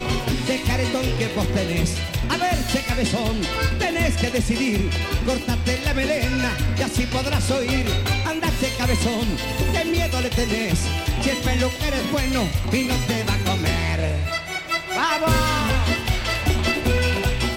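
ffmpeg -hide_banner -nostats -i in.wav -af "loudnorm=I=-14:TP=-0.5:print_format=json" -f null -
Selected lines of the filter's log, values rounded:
"input_i" : "-21.8",
"input_tp" : "-7.6",
"input_lra" : "1.4",
"input_thresh" : "-31.8",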